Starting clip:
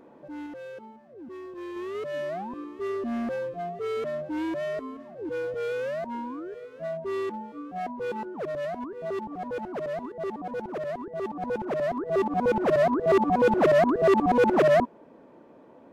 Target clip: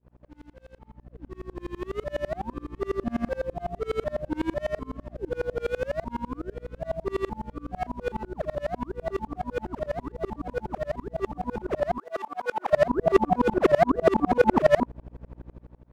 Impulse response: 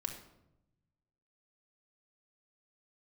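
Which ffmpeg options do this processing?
-filter_complex "[0:a]aeval=exprs='val(0)+0.0112*(sin(2*PI*60*n/s)+sin(2*PI*2*60*n/s)/2+sin(2*PI*3*60*n/s)/3+sin(2*PI*4*60*n/s)/4+sin(2*PI*5*60*n/s)/5)':c=same,dynaudnorm=f=770:g=3:m=4.22,aeval=exprs='sgn(val(0))*max(abs(val(0))-0.00473,0)':c=same,asettb=1/sr,asplit=3[s0][s1][s2];[s0]atrim=end=11.984[s3];[s1]atrim=start=11.98:end=12.73,asetpts=PTS-STARTPTS,afade=t=in:d=0.004:c=qsin,afade=t=out:st=0.746:d=0.004:c=qsin,highpass=800[s4];[s2]atrim=start=12.726[s5];[s3][s4]acrossfade=d=0.004:c1=hsin:c2=qsin[s6];[s6][s5]acrossfade=d=0.004:c1=qsin:c2=hsin,aeval=exprs='val(0)*pow(10,-32*if(lt(mod(-12*n/s,1),2*abs(-12)/1000),1-mod(-12*n/s,1)/(2*abs(-12)/1000),(mod(-12*n/s,1)-2*abs(-12)/1000)/(1-2*abs(-12)/1000))/20)':c=same,volume=0.668"

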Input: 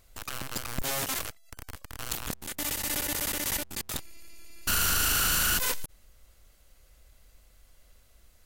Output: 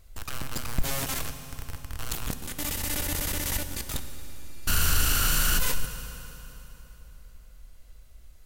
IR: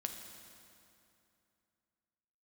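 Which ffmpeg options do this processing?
-filter_complex "[0:a]lowshelf=f=130:g=10.5,asplit=2[s0][s1];[1:a]atrim=start_sample=2205,asetrate=32634,aresample=44100[s2];[s1][s2]afir=irnorm=-1:irlink=0,volume=1.26[s3];[s0][s3]amix=inputs=2:normalize=0,volume=0.422"

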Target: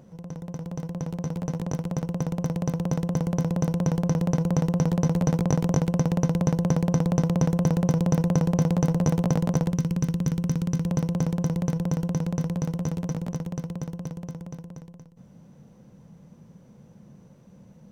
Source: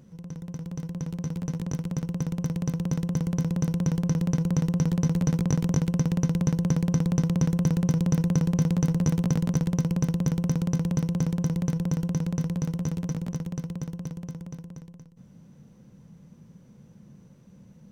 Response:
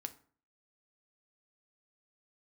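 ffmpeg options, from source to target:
-af "asetnsamples=n=441:p=0,asendcmd='9.72 equalizer g -2;10.86 equalizer g 6.5',equalizer=f=690:w=0.97:g=10"

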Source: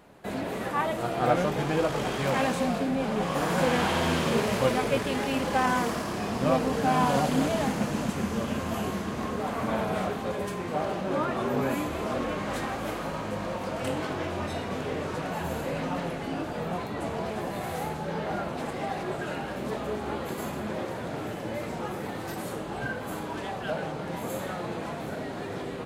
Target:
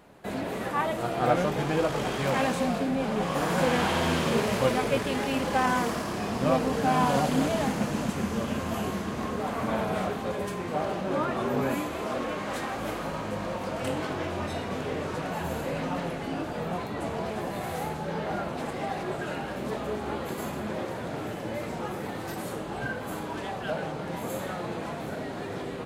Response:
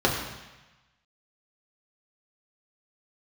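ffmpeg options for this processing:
-filter_complex "[0:a]asettb=1/sr,asplit=3[s0][s1][s2];[s0]atrim=end=11.804[s3];[s1]atrim=start=11.8:end=12.76,asetpts=PTS-STARTPTS,afade=t=in:d=0.004:c=qsin,afade=t=out:st=0.956:d=0.004:c=qsin,lowshelf=f=160:g=-8[s4];[s2]atrim=start=12.756[s5];[s3][s4]acrossfade=d=0.004:c1=hsin:c2=qsin[s6];[s6][s5]acrossfade=d=0.004:c1=qsin:c2=hsin"

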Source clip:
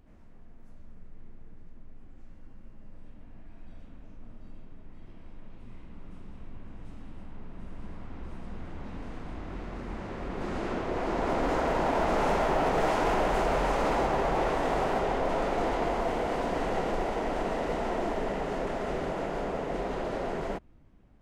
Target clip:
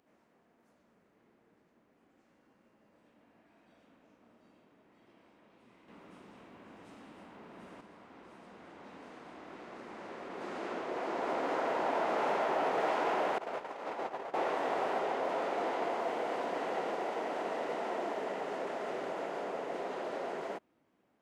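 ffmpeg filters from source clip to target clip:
-filter_complex "[0:a]acrossover=split=4400[s0][s1];[s1]acompressor=threshold=0.00158:ratio=4:attack=1:release=60[s2];[s0][s2]amix=inputs=2:normalize=0,highpass=340,asettb=1/sr,asplit=3[s3][s4][s5];[s3]atrim=end=5.884[s6];[s4]atrim=start=5.88:end=7.81,asetpts=PTS-STARTPTS,afade=t=in:d=0.004:c=qsin,afade=t=out:st=1.926:d=0.004:c=qsin,acontrast=64[s7];[s5]atrim=start=7.806[s8];[s6][s7]acrossfade=d=0.004:c1=hsin:c2=qsin[s9];[s9][s8]acrossfade=d=0.004:c1=qsin:c2=hsin,asettb=1/sr,asplit=3[s10][s11][s12];[s10]atrim=end=13.384[s13];[s11]atrim=start=13.38:end=14.34,asetpts=PTS-STARTPTS,afade=t=in:d=0.004:c=qsin,afade=t=out:st=0.956:d=0.004:c=qsin,agate=range=0.0794:threshold=0.0501:ratio=16:detection=peak[s14];[s12]atrim=start=14.336[s15];[s13][s14]acrossfade=d=0.004:c1=hsin:c2=qsin[s16];[s16][s15]acrossfade=d=0.004:c1=qsin:c2=hsin,volume=0.631"

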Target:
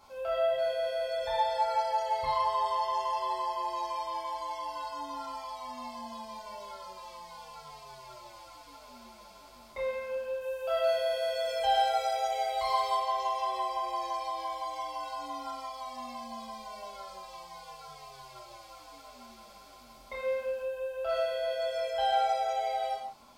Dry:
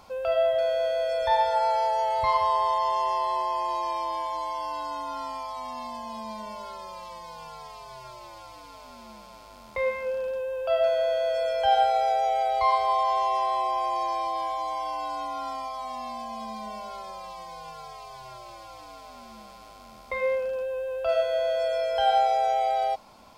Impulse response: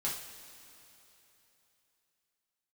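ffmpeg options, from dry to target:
-filter_complex "[0:a]asetnsamples=n=441:p=0,asendcmd='10.41 highshelf g 12;12.96 highshelf g 5',highshelf=f=3600:g=4[s0];[1:a]atrim=start_sample=2205,afade=t=out:st=0.24:d=0.01,atrim=end_sample=11025[s1];[s0][s1]afir=irnorm=-1:irlink=0,volume=0.376"

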